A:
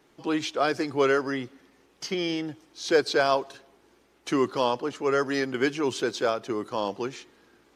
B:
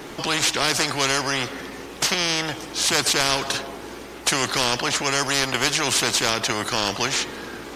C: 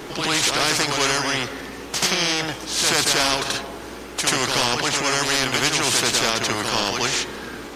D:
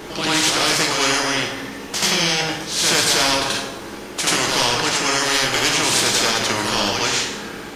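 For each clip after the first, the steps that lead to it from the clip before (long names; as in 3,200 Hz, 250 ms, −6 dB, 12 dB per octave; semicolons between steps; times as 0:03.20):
every bin compressed towards the loudest bin 4 to 1; level +5 dB
backwards echo 84 ms −4 dB
dense smooth reverb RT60 0.73 s, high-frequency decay 0.95×, DRR 1.5 dB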